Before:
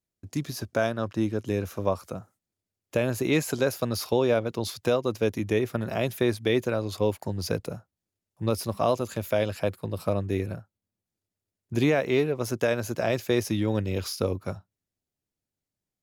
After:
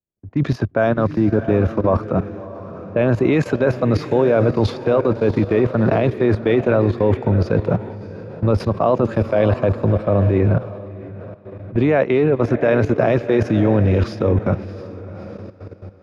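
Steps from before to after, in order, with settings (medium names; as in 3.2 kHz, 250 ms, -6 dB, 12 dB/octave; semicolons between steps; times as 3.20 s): reverse; compression 12:1, threshold -30 dBFS, peak gain reduction 13 dB; reverse; level-controlled noise filter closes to 840 Hz, open at -32.5 dBFS; low-pass 1.8 kHz 12 dB/octave; on a send: echo that smears into a reverb 648 ms, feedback 45%, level -10 dB; on the sum: level held to a coarse grid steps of 13 dB; loudness maximiser +28.5 dB; three bands expanded up and down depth 40%; trim -4 dB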